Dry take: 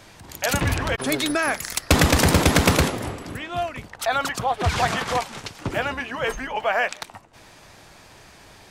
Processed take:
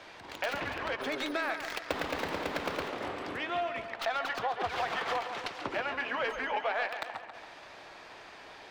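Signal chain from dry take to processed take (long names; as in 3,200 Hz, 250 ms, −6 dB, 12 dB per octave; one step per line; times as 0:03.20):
stylus tracing distortion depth 0.35 ms
downward compressor 6 to 1, threshold −29 dBFS, peak gain reduction 15.5 dB
three-way crossover with the lows and the highs turned down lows −16 dB, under 310 Hz, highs −18 dB, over 4,600 Hz
tape delay 139 ms, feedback 62%, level −8.5 dB, low-pass 5,600 Hz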